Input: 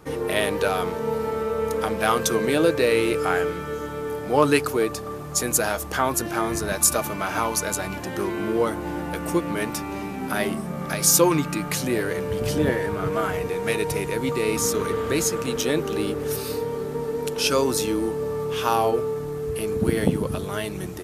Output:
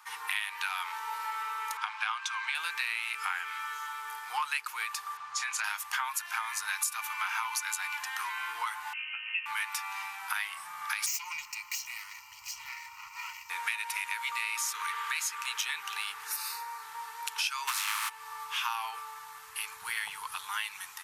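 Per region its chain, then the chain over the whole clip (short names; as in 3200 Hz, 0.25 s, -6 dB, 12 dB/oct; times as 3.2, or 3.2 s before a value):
1.77–2.55 steep high-pass 650 Hz 48 dB/oct + air absorption 100 m + notch 1900 Hz, Q 9.2
5.17–5.64 LPF 4600 Hz + doubler 29 ms -8.5 dB
8.93–9.46 inverted band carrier 3000 Hz + resonator 270 Hz, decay 0.21 s, harmonics odd, mix 80%
11.06–13.5 minimum comb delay 2.1 ms + bell 720 Hz -14 dB 3 oct + fixed phaser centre 2400 Hz, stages 8
16.25–16.83 HPF 190 Hz 6 dB/oct + bell 3200 Hz -14.5 dB 0.21 oct
17.67–18.08 spectral contrast lowered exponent 0.37 + bell 1200 Hz +10 dB 0.6 oct
whole clip: elliptic high-pass 910 Hz, stop band 40 dB; dynamic EQ 2400 Hz, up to +7 dB, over -42 dBFS, Q 1.5; compressor 5:1, threshold -30 dBFS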